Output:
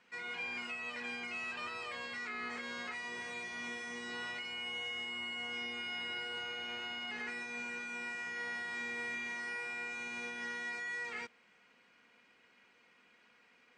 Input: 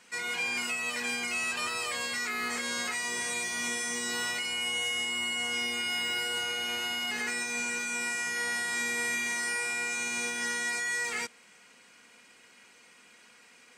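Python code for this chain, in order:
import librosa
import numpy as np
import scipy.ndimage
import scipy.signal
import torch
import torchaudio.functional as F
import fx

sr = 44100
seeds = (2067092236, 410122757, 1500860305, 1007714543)

y = scipy.signal.sosfilt(scipy.signal.butter(2, 3200.0, 'lowpass', fs=sr, output='sos'), x)
y = F.gain(torch.from_numpy(y), -7.5).numpy()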